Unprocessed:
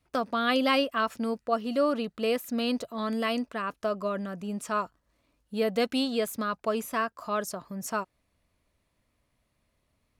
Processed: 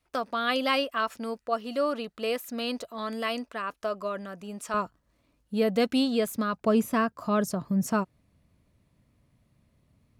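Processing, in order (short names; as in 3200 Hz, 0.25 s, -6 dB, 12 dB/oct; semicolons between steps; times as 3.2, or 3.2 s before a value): bell 140 Hz -7 dB 2.5 oct, from 4.74 s +5.5 dB, from 6.61 s +14 dB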